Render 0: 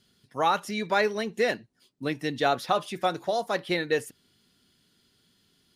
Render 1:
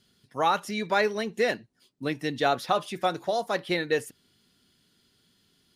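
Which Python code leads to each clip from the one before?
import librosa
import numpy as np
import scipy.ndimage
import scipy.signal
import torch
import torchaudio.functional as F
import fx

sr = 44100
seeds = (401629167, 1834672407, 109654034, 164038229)

y = x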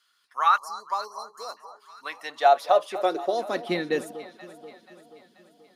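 y = fx.filter_sweep_highpass(x, sr, from_hz=1200.0, to_hz=220.0, start_s=1.93, end_s=3.74, q=4.0)
y = fx.spec_erase(y, sr, start_s=0.58, length_s=0.99, low_hz=1200.0, high_hz=4000.0)
y = fx.echo_alternate(y, sr, ms=241, hz=1100.0, feedback_pct=71, wet_db=-13.0)
y = y * 10.0 ** (-2.5 / 20.0)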